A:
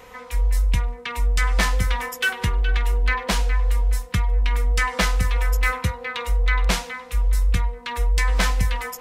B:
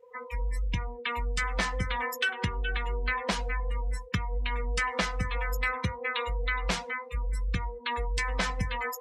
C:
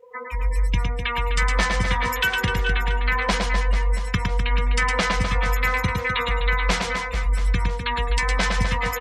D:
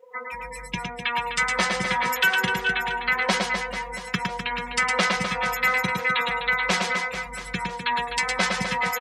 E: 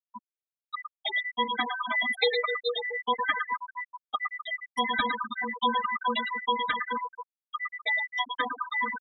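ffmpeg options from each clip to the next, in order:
-af "highpass=79,afftdn=nr=33:nf=-33,acompressor=threshold=0.0447:ratio=3"
-af "aecho=1:1:110|253|438.9|680.6|994.7:0.631|0.398|0.251|0.158|0.1,volume=2"
-af "highpass=150,lowshelf=f=210:g=-5.5,aecho=1:1:5.4:0.54"
-af "afftfilt=real='real(if(lt(b,960),b+48*(1-2*mod(floor(b/48),2)),b),0)':imag='imag(if(lt(b,960),b+48*(1-2*mod(floor(b/48),2)),b),0)':win_size=2048:overlap=0.75,afftfilt=real='re*gte(hypot(re,im),0.224)':imag='im*gte(hypot(re,im),0.224)':win_size=1024:overlap=0.75,lowshelf=f=480:g=-9"

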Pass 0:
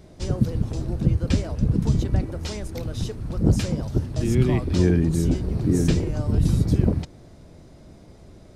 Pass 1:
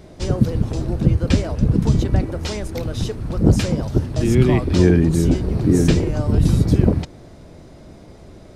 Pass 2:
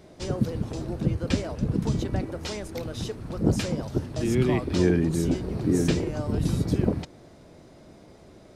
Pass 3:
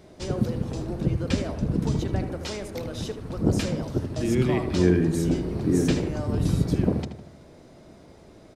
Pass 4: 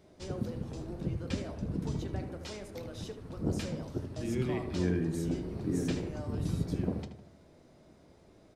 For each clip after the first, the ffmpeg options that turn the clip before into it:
-af "bass=f=250:g=-3,treble=f=4000:g=-3,volume=2.24"
-af "lowshelf=f=99:g=-11,volume=0.531"
-filter_complex "[0:a]asplit=2[s0][s1];[s1]adelay=78,lowpass=f=2400:p=1,volume=0.398,asplit=2[s2][s3];[s3]adelay=78,lowpass=f=2400:p=1,volume=0.51,asplit=2[s4][s5];[s5]adelay=78,lowpass=f=2400:p=1,volume=0.51,asplit=2[s6][s7];[s7]adelay=78,lowpass=f=2400:p=1,volume=0.51,asplit=2[s8][s9];[s9]adelay=78,lowpass=f=2400:p=1,volume=0.51,asplit=2[s10][s11];[s11]adelay=78,lowpass=f=2400:p=1,volume=0.51[s12];[s0][s2][s4][s6][s8][s10][s12]amix=inputs=7:normalize=0"
-af "flanger=delay=9.6:depth=3.5:regen=-65:speed=0.7:shape=triangular,volume=0.531"

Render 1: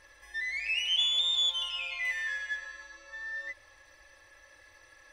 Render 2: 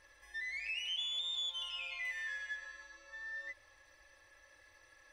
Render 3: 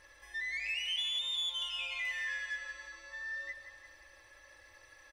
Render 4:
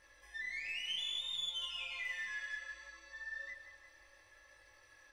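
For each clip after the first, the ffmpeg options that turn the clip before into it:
-af "acompressor=threshold=0.0251:ratio=2.5,volume=0.501"
-filter_complex "[0:a]asplit=2[s0][s1];[s1]asoftclip=type=tanh:threshold=0.0112,volume=0.631[s2];[s0][s2]amix=inputs=2:normalize=0,aecho=1:1:172|344|516|688|860|1032:0.316|0.168|0.0888|0.0471|0.025|0.0132"
-af "aeval=exprs='0.0501*(cos(1*acos(clip(val(0)/0.0501,-1,1)))-cos(1*PI/2))+0.00316*(cos(2*acos(clip(val(0)/0.0501,-1,1)))-cos(2*PI/2))':c=same,flanger=delay=18.5:depth=7:speed=0.65,volume=0.841"

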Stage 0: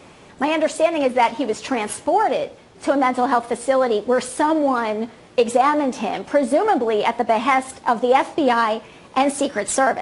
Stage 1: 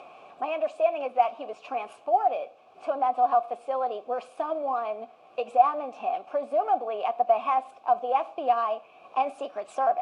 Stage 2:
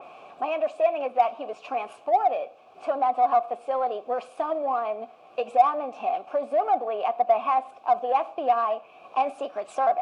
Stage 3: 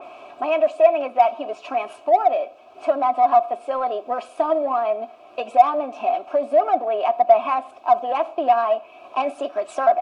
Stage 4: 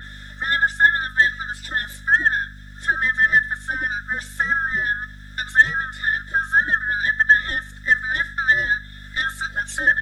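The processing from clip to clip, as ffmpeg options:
-filter_complex "[0:a]acompressor=mode=upward:threshold=0.0398:ratio=2.5,acrusher=bits=7:mix=0:aa=0.5,asplit=3[s0][s1][s2];[s0]bandpass=f=730:t=q:w=8,volume=1[s3];[s1]bandpass=f=1090:t=q:w=8,volume=0.501[s4];[s2]bandpass=f=2440:t=q:w=8,volume=0.355[s5];[s3][s4][s5]amix=inputs=3:normalize=0"
-filter_complex "[0:a]asplit=2[s0][s1];[s1]asoftclip=type=tanh:threshold=0.0631,volume=0.376[s2];[s0][s2]amix=inputs=2:normalize=0,adynamicequalizer=threshold=0.00891:dfrequency=3000:dqfactor=0.7:tfrequency=3000:tqfactor=0.7:attack=5:release=100:ratio=0.375:range=3:mode=cutabove:tftype=highshelf"
-af "aecho=1:1:3.1:0.6,volume=1.58"
-af "afftfilt=real='real(if(lt(b,960),b+48*(1-2*mod(floor(b/48),2)),b),0)':imag='imag(if(lt(b,960),b+48*(1-2*mod(floor(b/48),2)),b),0)':win_size=2048:overlap=0.75,bass=f=250:g=-12,treble=f=4000:g=15,aeval=exprs='val(0)+0.0126*(sin(2*PI*50*n/s)+sin(2*PI*2*50*n/s)/2+sin(2*PI*3*50*n/s)/3+sin(2*PI*4*50*n/s)/4+sin(2*PI*5*50*n/s)/5)':c=same,volume=0.891"

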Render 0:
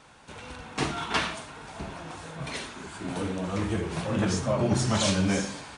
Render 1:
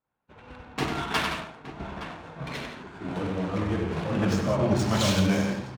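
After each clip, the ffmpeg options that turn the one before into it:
-af "agate=range=0.0224:threshold=0.0141:ratio=3:detection=peak,aecho=1:1:96|167|867:0.501|0.355|0.237,adynamicsmooth=sensitivity=6.5:basefreq=2100"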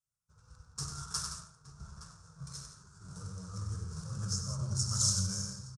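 -af "firequalizer=gain_entry='entry(140,0);entry(260,-28);entry(460,-18);entry(730,-25);entry(1300,-5);entry(2000,-29);entry(3100,-23);entry(5300,11);entry(9400,13);entry(15000,-19)':delay=0.05:min_phase=1,volume=0.501"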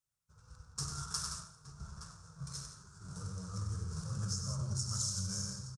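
-af "acompressor=threshold=0.02:ratio=6,aecho=1:1:130|260|390:0.0708|0.0368|0.0191,volume=1.12"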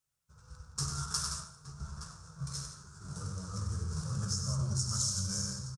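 -filter_complex "[0:a]asplit=2[s0][s1];[s1]adelay=14,volume=0.299[s2];[s0][s2]amix=inputs=2:normalize=0,volume=1.5"

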